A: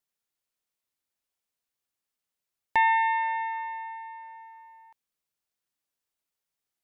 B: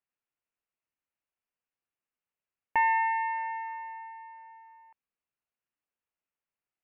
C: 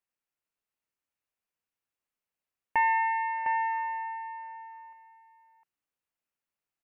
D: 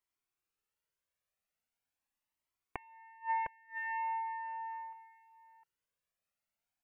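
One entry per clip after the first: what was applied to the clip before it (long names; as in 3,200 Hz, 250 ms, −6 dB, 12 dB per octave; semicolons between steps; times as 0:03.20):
elliptic low-pass filter 2,800 Hz, stop band 40 dB; level −2.5 dB
single-tap delay 706 ms −7 dB
gate with flip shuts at −23 dBFS, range −30 dB; flanger whose copies keep moving one way rising 0.41 Hz; level +4 dB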